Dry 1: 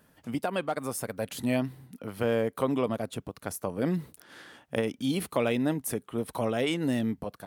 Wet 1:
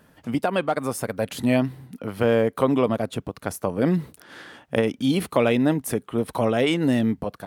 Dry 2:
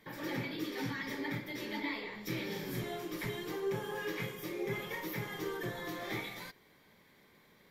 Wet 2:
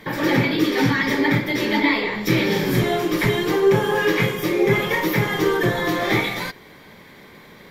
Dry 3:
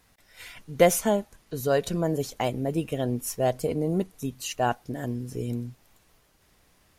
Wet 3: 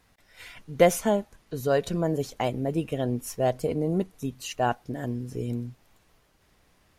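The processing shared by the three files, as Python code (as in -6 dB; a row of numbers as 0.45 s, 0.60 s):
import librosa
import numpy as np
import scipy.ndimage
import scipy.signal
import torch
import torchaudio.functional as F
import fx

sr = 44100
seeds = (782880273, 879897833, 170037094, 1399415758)

y = fx.high_shelf(x, sr, hz=5700.0, db=-6.5)
y = librosa.util.normalize(y) * 10.0 ** (-6 / 20.0)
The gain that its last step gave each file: +7.5 dB, +19.5 dB, 0.0 dB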